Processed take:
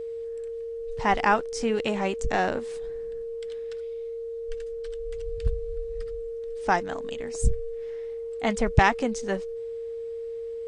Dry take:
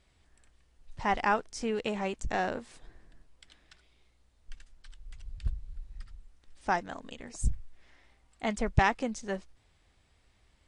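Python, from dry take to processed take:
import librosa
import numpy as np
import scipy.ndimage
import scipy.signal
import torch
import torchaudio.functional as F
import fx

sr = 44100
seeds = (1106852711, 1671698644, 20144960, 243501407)

y = x + 10.0 ** (-37.0 / 20.0) * np.sin(2.0 * np.pi * 460.0 * np.arange(len(x)) / sr)
y = y * 10.0 ** (5.5 / 20.0)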